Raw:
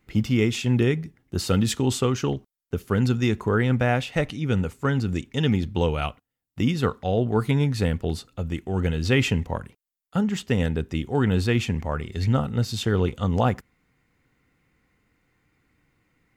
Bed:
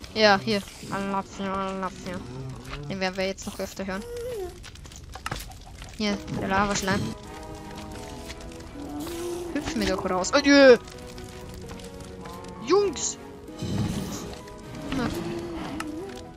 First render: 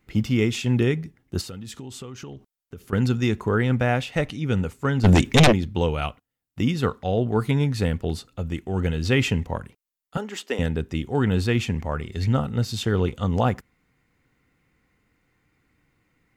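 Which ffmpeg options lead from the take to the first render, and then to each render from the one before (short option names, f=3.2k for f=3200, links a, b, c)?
-filter_complex "[0:a]asettb=1/sr,asplit=3[a][b][c];[a]atrim=end=1.414[d];[b]atrim=start=1.41:end=2.93,asetpts=PTS-STARTPTS,afade=t=in:d=0.004:c=qsin,afade=t=out:st=1.516:d=0.004:c=qsin,acompressor=threshold=-35dB:ratio=5:attack=3.2:release=140:knee=1:detection=peak[e];[c]atrim=start=2.926[f];[d][e]acrossfade=d=0.004:c1=hsin:c2=qsin[g];[g][f]acrossfade=d=0.004:c1=qsin:c2=hsin,asplit=3[h][i][j];[h]afade=t=out:st=5.03:d=0.02[k];[i]aeval=exprs='0.335*sin(PI/2*3.98*val(0)/0.335)':c=same,afade=t=in:st=5.03:d=0.02,afade=t=out:st=5.51:d=0.02[l];[j]afade=t=in:st=5.51:d=0.02[m];[k][l][m]amix=inputs=3:normalize=0,asettb=1/sr,asplit=3[n][o][p];[n]atrim=end=10.174[q];[o]atrim=start=10.17:end=10.59,asetpts=PTS-STARTPTS,afade=t=in:d=0.004:c=qsin,afade=t=out:st=0.416:d=0.004:c=qsin,highpass=f=310:w=0.5412,highpass=f=310:w=1.3066[r];[p]atrim=start=10.586[s];[q][r]acrossfade=d=0.004:c1=hsin:c2=qsin[t];[t][s]acrossfade=d=0.004:c1=qsin:c2=hsin"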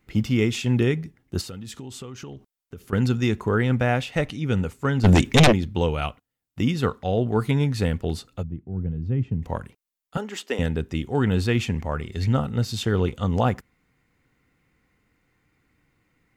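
-filter_complex "[0:a]asplit=3[a][b][c];[a]afade=t=out:st=8.42:d=0.02[d];[b]bandpass=f=130:t=q:w=1.3,afade=t=in:st=8.42:d=0.02,afade=t=out:st=9.42:d=0.02[e];[c]afade=t=in:st=9.42:d=0.02[f];[d][e][f]amix=inputs=3:normalize=0"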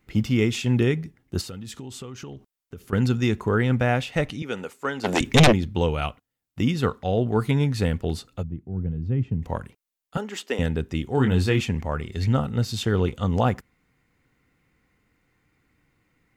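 -filter_complex "[0:a]asettb=1/sr,asplit=3[a][b][c];[a]atrim=end=4.424[d];[b]atrim=start=4.42:end=5.21,asetpts=PTS-STARTPTS,afade=t=in:d=0.004:c=qsin,afade=t=out:st=0.786:d=0.004:c=qsin,highpass=380[e];[c]atrim=start=5.206[f];[d][e]acrossfade=d=0.004:c1=hsin:c2=qsin[g];[g][f]acrossfade=d=0.004:c1=qsin:c2=hsin,asettb=1/sr,asplit=3[h][i][j];[h]atrim=end=11.154[k];[i]atrim=start=11.15:end=11.61,asetpts=PTS-STARTPTS,afade=t=in:d=0.004:c=qsin,afade=t=out:st=0.456:d=0.004:c=qsin,asplit=2[l][m];[m]adelay=23,volume=-6.5dB[n];[l][n]amix=inputs=2:normalize=0,atrim=end_sample=20286[o];[j]atrim=start=11.606[p];[k][o]acrossfade=d=0.004:c1=hsin:c2=qsin[q];[q][p]acrossfade=d=0.004:c1=qsin:c2=hsin"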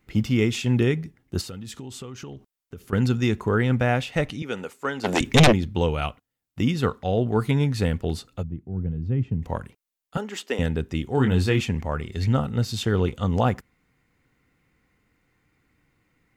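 -af anull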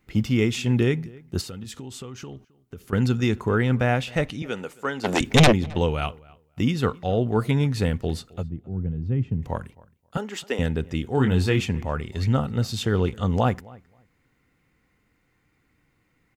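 -filter_complex "[0:a]asplit=2[a][b];[b]adelay=266,lowpass=f=2.6k:p=1,volume=-23dB,asplit=2[c][d];[d]adelay=266,lowpass=f=2.6k:p=1,volume=0.16[e];[a][c][e]amix=inputs=3:normalize=0"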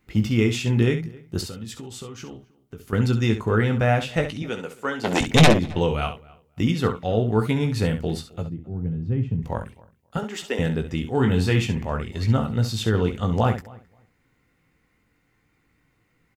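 -af "aecho=1:1:18|67:0.398|0.316"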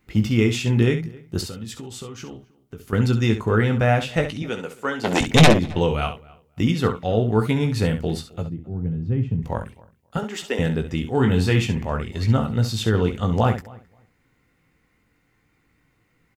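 -af "volume=1.5dB"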